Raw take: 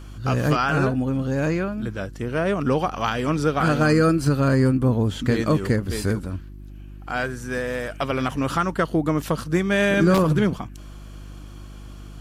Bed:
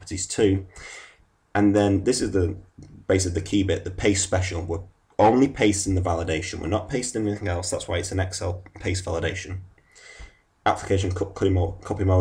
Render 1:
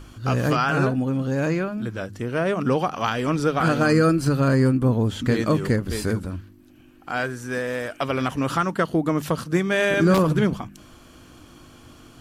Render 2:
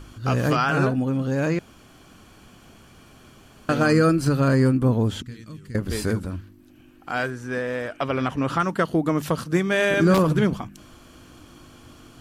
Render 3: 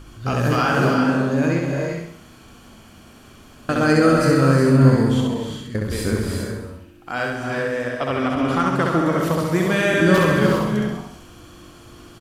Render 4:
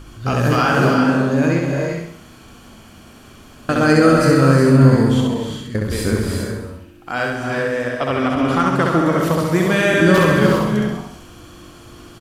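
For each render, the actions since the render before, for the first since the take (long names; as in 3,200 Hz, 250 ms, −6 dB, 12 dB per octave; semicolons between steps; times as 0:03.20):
hum removal 50 Hz, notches 4
0:01.59–0:03.69: fill with room tone; 0:05.22–0:05.75: guitar amp tone stack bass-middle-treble 6-0-2; 0:07.30–0:08.60: low-pass filter 3,300 Hz 6 dB per octave
on a send: repeating echo 66 ms, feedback 47%, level −3 dB; on the sum: reverb whose tail is shaped and stops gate 420 ms rising, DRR 3 dB
level +3 dB; brickwall limiter −1 dBFS, peak gain reduction 2 dB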